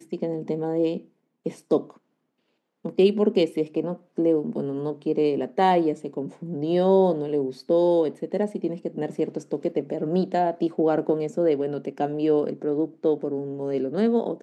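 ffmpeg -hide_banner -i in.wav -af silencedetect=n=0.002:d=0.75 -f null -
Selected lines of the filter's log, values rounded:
silence_start: 1.98
silence_end: 2.84 | silence_duration: 0.87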